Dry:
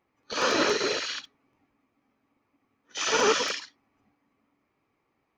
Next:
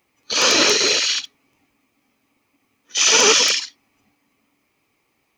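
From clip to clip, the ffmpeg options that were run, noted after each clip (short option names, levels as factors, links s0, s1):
-af "aexciter=amount=3.2:drive=4.7:freq=2200,volume=1.68"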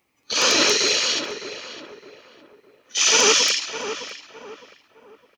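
-filter_complex "[0:a]asplit=2[s0][s1];[s1]adelay=610,lowpass=f=1700:p=1,volume=0.376,asplit=2[s2][s3];[s3]adelay=610,lowpass=f=1700:p=1,volume=0.37,asplit=2[s4][s5];[s5]adelay=610,lowpass=f=1700:p=1,volume=0.37,asplit=2[s6][s7];[s7]adelay=610,lowpass=f=1700:p=1,volume=0.37[s8];[s0][s2][s4][s6][s8]amix=inputs=5:normalize=0,volume=0.75"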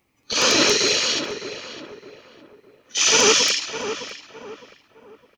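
-af "lowshelf=f=230:g=9.5"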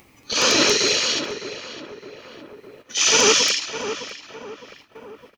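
-af "agate=range=0.251:threshold=0.002:ratio=16:detection=peak,acompressor=mode=upward:threshold=0.0251:ratio=2.5"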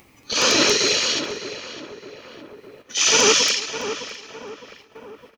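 -af "aecho=1:1:332|664|996:0.0891|0.0392|0.0173"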